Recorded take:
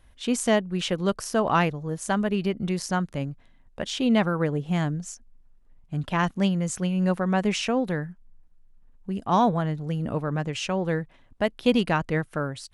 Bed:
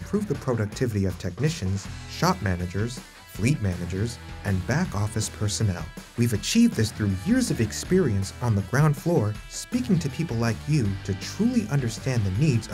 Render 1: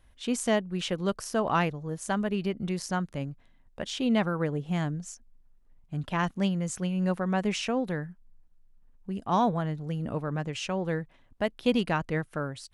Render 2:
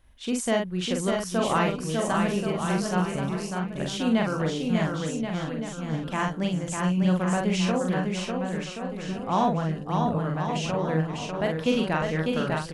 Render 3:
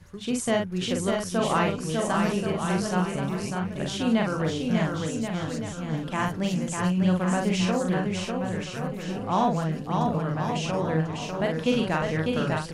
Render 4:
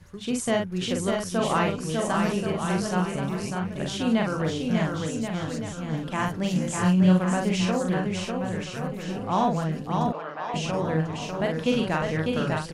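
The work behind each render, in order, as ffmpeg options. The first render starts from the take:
ffmpeg -i in.wav -af "volume=-4dB" out.wav
ffmpeg -i in.wav -filter_complex "[0:a]asplit=2[link_01][link_02];[link_02]adelay=44,volume=-3.5dB[link_03];[link_01][link_03]amix=inputs=2:normalize=0,aecho=1:1:600|1080|1464|1771|2017:0.631|0.398|0.251|0.158|0.1" out.wav
ffmpeg -i in.wav -i bed.wav -filter_complex "[1:a]volume=-15.5dB[link_01];[0:a][link_01]amix=inputs=2:normalize=0" out.wav
ffmpeg -i in.wav -filter_complex "[0:a]asplit=3[link_01][link_02][link_03];[link_01]afade=type=out:start_time=6.54:duration=0.02[link_04];[link_02]asplit=2[link_05][link_06];[link_06]adelay=27,volume=-2.5dB[link_07];[link_05][link_07]amix=inputs=2:normalize=0,afade=type=in:start_time=6.54:duration=0.02,afade=type=out:start_time=7.18:duration=0.02[link_08];[link_03]afade=type=in:start_time=7.18:duration=0.02[link_09];[link_04][link_08][link_09]amix=inputs=3:normalize=0,asettb=1/sr,asplit=3[link_10][link_11][link_12];[link_10]atrim=end=10.124[link_13];[link_11]atrim=start=10.12:end=10.54,asetpts=PTS-STARTPTS,afade=type=in:duration=0.004:curve=qsin,afade=type=out:start_time=0.416:duration=0.004:curve=qsin,highpass=580,lowpass=3900[link_14];[link_12]atrim=start=10.536[link_15];[link_13][link_14]acrossfade=duration=0.004:curve1=hsin:curve2=qsin[link_16];[link_16][link_15]acrossfade=duration=0.004:curve1=qsin:curve2=hsin" out.wav

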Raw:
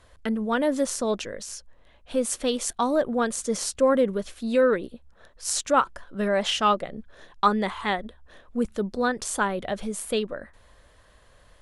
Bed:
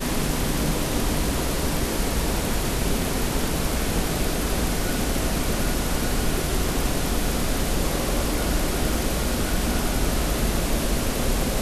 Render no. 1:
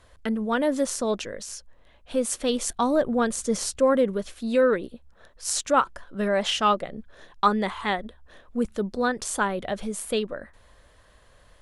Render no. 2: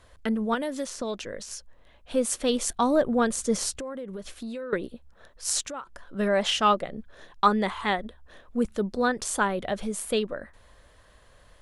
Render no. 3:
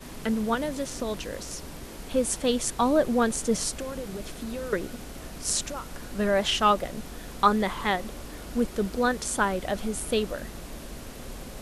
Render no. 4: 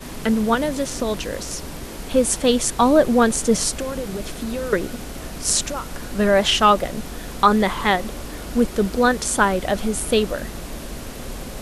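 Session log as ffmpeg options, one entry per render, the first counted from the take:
ffmpeg -i in.wav -filter_complex "[0:a]asettb=1/sr,asplit=3[link_01][link_02][link_03];[link_01]atrim=end=2.494[link_04];[link_02]atrim=start=2.49:end=3.78,asetpts=PTS-STARTPTS,afade=type=in:duration=0.004:curve=qsin,afade=type=out:start_time=1.286:duration=0.004:curve=qsin,lowshelf=frequency=190:gain=6.5[link_05];[link_03]atrim=start=3.776[link_06];[link_04][link_05]acrossfade=duration=0.004:curve1=hsin:curve2=qsin[link_07];[link_07][link_06]acrossfade=duration=0.004:curve1=qsin:curve2=hsin" out.wav
ffmpeg -i in.wav -filter_complex "[0:a]asettb=1/sr,asplit=3[link_01][link_02][link_03];[link_01]atrim=end=0.544[link_04];[link_02]atrim=start=0.54:end=1.51,asetpts=PTS-STARTPTS,afade=type=in:duration=0.004:curve=qsin,afade=type=out:start_time=0.966:duration=0.004:curve=qsin,acrossover=split=2000|6300[link_05][link_06][link_07];[link_05]acompressor=threshold=-29dB:ratio=4[link_08];[link_06]acompressor=threshold=-39dB:ratio=4[link_09];[link_07]acompressor=threshold=-48dB:ratio=4[link_10];[link_08][link_09][link_10]amix=inputs=3:normalize=0[link_11];[link_03]atrim=start=1.506[link_12];[link_04][link_11]acrossfade=duration=0.004:curve1=hsin:curve2=qsin[link_13];[link_13][link_12]acrossfade=duration=0.004:curve1=qsin:curve2=hsin,asettb=1/sr,asplit=3[link_14][link_15][link_16];[link_14]atrim=end=3.804[link_17];[link_15]atrim=start=3.8:end=4.73,asetpts=PTS-STARTPTS,afade=type=in:duration=0.004:curve=qsin,afade=type=out:start_time=0.926:duration=0.004:curve=qsin,acompressor=threshold=-32dB:ratio=12:attack=3.2:release=140:knee=1:detection=peak[link_18];[link_16]atrim=start=4.726[link_19];[link_17][link_18]acrossfade=duration=0.004:curve1=hsin:curve2=qsin[link_20];[link_20][link_19]acrossfade=duration=0.004:curve1=qsin:curve2=hsin,asettb=1/sr,asplit=3[link_21][link_22][link_23];[link_21]atrim=end=5.684[link_24];[link_22]atrim=start=5.68:end=6.08,asetpts=PTS-STARTPTS,afade=type=in:duration=0.004:curve=qsin,afade=type=out:start_time=0.396:duration=0.004:curve=qsin,acompressor=threshold=-39dB:ratio=3:attack=3.2:release=140:knee=1:detection=peak[link_25];[link_23]atrim=start=6.076[link_26];[link_24][link_25]acrossfade=duration=0.004:curve1=hsin:curve2=qsin[link_27];[link_27][link_26]acrossfade=duration=0.004:curve1=qsin:curve2=hsin" out.wav
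ffmpeg -i in.wav -i bed.wav -filter_complex "[1:a]volume=-16.5dB[link_01];[0:a][link_01]amix=inputs=2:normalize=0" out.wav
ffmpeg -i in.wav -af "volume=7.5dB,alimiter=limit=-3dB:level=0:latency=1" out.wav

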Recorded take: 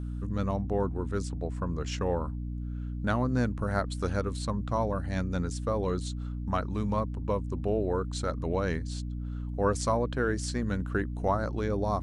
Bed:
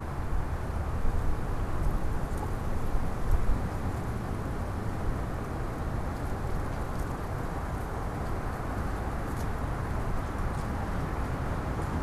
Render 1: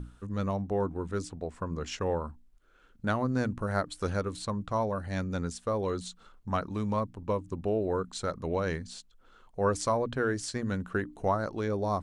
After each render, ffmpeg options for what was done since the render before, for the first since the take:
ffmpeg -i in.wav -af "bandreject=frequency=60:width_type=h:width=6,bandreject=frequency=120:width_type=h:width=6,bandreject=frequency=180:width_type=h:width=6,bandreject=frequency=240:width_type=h:width=6,bandreject=frequency=300:width_type=h:width=6" out.wav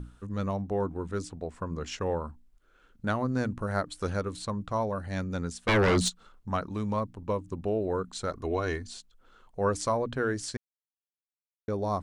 ffmpeg -i in.wav -filter_complex "[0:a]asplit=3[link_01][link_02][link_03];[link_01]afade=type=out:start_time=5.67:duration=0.02[link_04];[link_02]aeval=exprs='0.112*sin(PI/2*3.55*val(0)/0.112)':channel_layout=same,afade=type=in:start_time=5.67:duration=0.02,afade=type=out:start_time=6.08:duration=0.02[link_05];[link_03]afade=type=in:start_time=6.08:duration=0.02[link_06];[link_04][link_05][link_06]amix=inputs=3:normalize=0,asettb=1/sr,asplit=3[link_07][link_08][link_09];[link_07]atrim=end=8.314[link_10];[link_08]atrim=start=8.31:end=8.97,asetpts=PTS-STARTPTS,afade=type=in:duration=0.004:curve=qsin,afade=type=out:start_time=0.656:duration=0.004:curve=qsin,aecho=1:1:2.8:0.65,atrim=end_sample=29106[link_11];[link_09]atrim=start=8.966[link_12];[link_10][link_11]acrossfade=duration=0.004:curve1=hsin:curve2=qsin[link_13];[link_13][link_12]acrossfade=duration=0.004:curve1=qsin:curve2=hsin,asplit=3[link_14][link_15][link_16];[link_14]atrim=end=10.57,asetpts=PTS-STARTPTS,afade=type=out:start_time=10.566:duration=0.004:curve=hsin[link_17];[link_15]atrim=start=10.57:end=11.68,asetpts=PTS-STARTPTS,volume=0[link_18];[link_16]atrim=start=11.68,asetpts=PTS-STARTPTS,afade=type=in:duration=0.004:curve=hsin[link_19];[link_17][link_18][link_19]concat=n=3:v=0:a=1" out.wav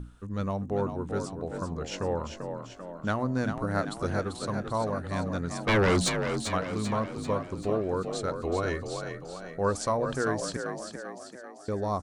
ffmpeg -i in.wav -filter_complex "[0:a]asplit=8[link_01][link_02][link_03][link_04][link_05][link_06][link_07][link_08];[link_02]adelay=391,afreqshift=42,volume=-7dB[link_09];[link_03]adelay=782,afreqshift=84,volume=-12.4dB[link_10];[link_04]adelay=1173,afreqshift=126,volume=-17.7dB[link_11];[link_05]adelay=1564,afreqshift=168,volume=-23.1dB[link_12];[link_06]adelay=1955,afreqshift=210,volume=-28.4dB[link_13];[link_07]adelay=2346,afreqshift=252,volume=-33.8dB[link_14];[link_08]adelay=2737,afreqshift=294,volume=-39.1dB[link_15];[link_01][link_09][link_10][link_11][link_12][link_13][link_14][link_15]amix=inputs=8:normalize=0" out.wav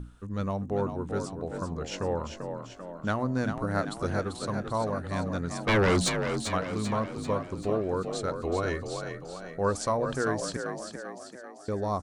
ffmpeg -i in.wav -af anull out.wav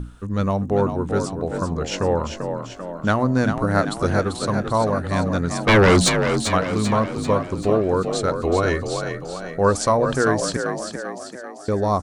ffmpeg -i in.wav -af "volume=9.5dB" out.wav

